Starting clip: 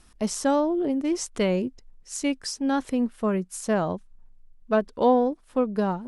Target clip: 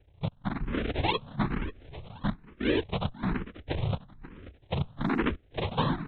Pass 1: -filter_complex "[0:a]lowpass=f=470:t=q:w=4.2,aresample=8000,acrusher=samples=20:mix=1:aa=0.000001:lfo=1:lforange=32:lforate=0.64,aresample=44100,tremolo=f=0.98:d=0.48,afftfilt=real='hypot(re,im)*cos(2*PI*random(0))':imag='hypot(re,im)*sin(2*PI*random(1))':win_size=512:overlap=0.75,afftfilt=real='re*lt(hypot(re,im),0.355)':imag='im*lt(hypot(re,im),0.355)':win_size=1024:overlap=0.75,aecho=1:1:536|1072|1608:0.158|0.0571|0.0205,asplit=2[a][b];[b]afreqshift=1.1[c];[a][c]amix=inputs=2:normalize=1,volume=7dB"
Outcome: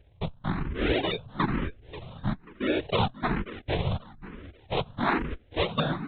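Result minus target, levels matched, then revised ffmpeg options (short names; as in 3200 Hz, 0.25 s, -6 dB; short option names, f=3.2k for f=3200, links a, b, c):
decimation with a swept rate: distortion -38 dB
-filter_complex "[0:a]lowpass=f=470:t=q:w=4.2,aresample=8000,acrusher=samples=55:mix=1:aa=0.000001:lfo=1:lforange=88:lforate=0.64,aresample=44100,tremolo=f=0.98:d=0.48,afftfilt=real='hypot(re,im)*cos(2*PI*random(0))':imag='hypot(re,im)*sin(2*PI*random(1))':win_size=512:overlap=0.75,afftfilt=real='re*lt(hypot(re,im),0.355)':imag='im*lt(hypot(re,im),0.355)':win_size=1024:overlap=0.75,aecho=1:1:536|1072|1608:0.158|0.0571|0.0205,asplit=2[a][b];[b]afreqshift=1.1[c];[a][c]amix=inputs=2:normalize=1,volume=7dB"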